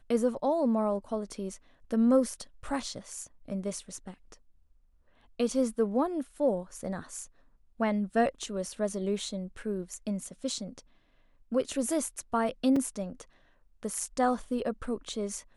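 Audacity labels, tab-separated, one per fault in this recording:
12.760000	12.760000	gap 3.7 ms
14.000000	14.000000	gap 4 ms

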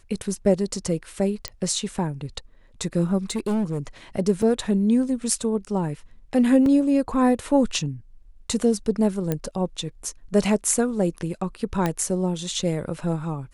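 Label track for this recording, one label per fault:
1.480000	1.480000	pop -13 dBFS
3.300000	3.790000	clipped -20.5 dBFS
4.420000	4.420000	gap 4 ms
6.660000	6.660000	gap 2.3 ms
9.320000	9.320000	pop -11 dBFS
11.860000	11.860000	pop -10 dBFS

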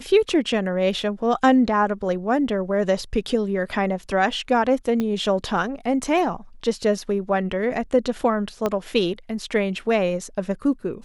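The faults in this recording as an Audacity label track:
5.000000	5.000000	pop -13 dBFS
8.660000	8.660000	pop -10 dBFS

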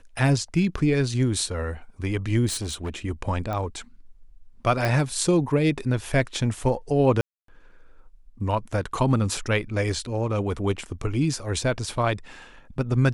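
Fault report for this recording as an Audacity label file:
2.470000	2.980000	clipped -25.5 dBFS
3.530000	3.530000	pop -18 dBFS
4.850000	4.850000	pop
7.210000	7.480000	gap 0.273 s
9.370000	9.370000	gap 3.1 ms

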